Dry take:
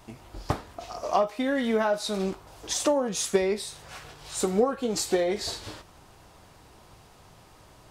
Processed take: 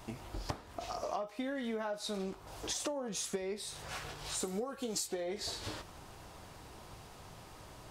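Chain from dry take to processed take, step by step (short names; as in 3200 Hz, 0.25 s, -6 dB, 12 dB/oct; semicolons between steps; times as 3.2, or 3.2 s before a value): 4.43–5.06 high shelf 6700 Hz -> 3400 Hz +12 dB; compressor 6:1, threshold -37 dBFS, peak gain reduction 18.5 dB; gain +1 dB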